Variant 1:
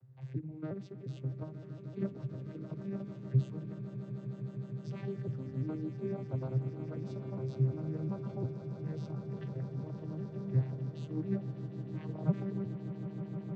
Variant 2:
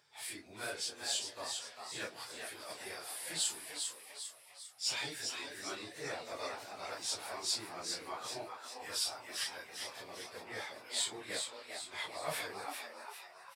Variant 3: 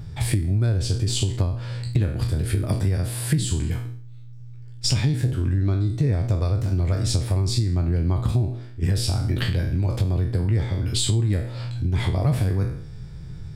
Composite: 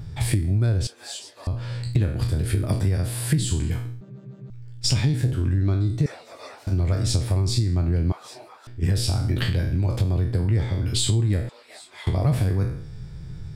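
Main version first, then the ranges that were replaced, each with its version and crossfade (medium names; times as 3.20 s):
3
0.87–1.47 s: from 2
4.01–4.50 s: from 1
6.06–6.67 s: from 2
8.12–8.67 s: from 2
11.49–12.07 s: from 2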